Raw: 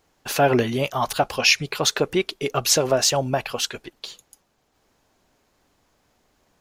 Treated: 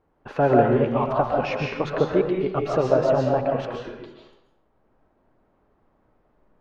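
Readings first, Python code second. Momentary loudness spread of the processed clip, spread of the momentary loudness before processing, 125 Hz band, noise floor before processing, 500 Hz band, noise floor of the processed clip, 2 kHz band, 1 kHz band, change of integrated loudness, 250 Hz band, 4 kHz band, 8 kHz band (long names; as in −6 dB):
15 LU, 10 LU, +2.0 dB, −68 dBFS, +2.5 dB, −67 dBFS, −8.0 dB, +0.5 dB, −1.0 dB, +2.5 dB, −18.5 dB, below −25 dB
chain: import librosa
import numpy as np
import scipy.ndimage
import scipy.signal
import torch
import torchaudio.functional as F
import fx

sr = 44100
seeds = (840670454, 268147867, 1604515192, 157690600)

y = scipy.signal.sosfilt(scipy.signal.butter(2, 1100.0, 'lowpass', fs=sr, output='sos'), x)
y = fx.peak_eq(y, sr, hz=700.0, db=-4.0, octaves=0.28)
y = fx.rev_freeverb(y, sr, rt60_s=0.8, hf_ratio=0.85, predelay_ms=95, drr_db=-1.0)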